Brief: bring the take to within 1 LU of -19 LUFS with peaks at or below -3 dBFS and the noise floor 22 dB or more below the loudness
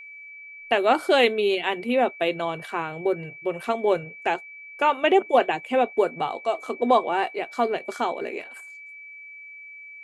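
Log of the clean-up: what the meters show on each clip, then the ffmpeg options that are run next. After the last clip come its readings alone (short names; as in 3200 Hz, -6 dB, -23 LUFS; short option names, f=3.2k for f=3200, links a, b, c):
steady tone 2300 Hz; tone level -40 dBFS; loudness -24.0 LUFS; peak -5.0 dBFS; loudness target -19.0 LUFS
-> -af "bandreject=f=2.3k:w=30"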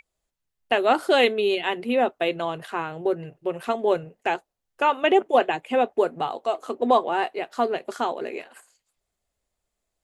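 steady tone none; loudness -24.0 LUFS; peak -5.5 dBFS; loudness target -19.0 LUFS
-> -af "volume=5dB,alimiter=limit=-3dB:level=0:latency=1"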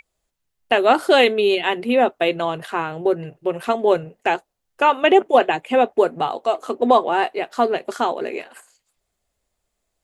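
loudness -19.5 LUFS; peak -3.0 dBFS; noise floor -77 dBFS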